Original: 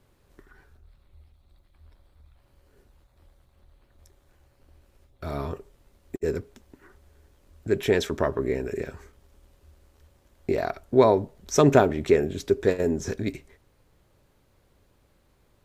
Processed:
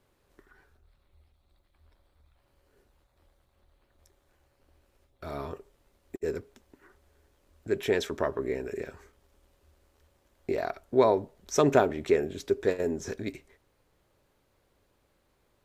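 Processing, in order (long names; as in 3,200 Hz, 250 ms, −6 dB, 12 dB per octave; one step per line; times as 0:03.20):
bass and treble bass −6 dB, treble −1 dB
level −3.5 dB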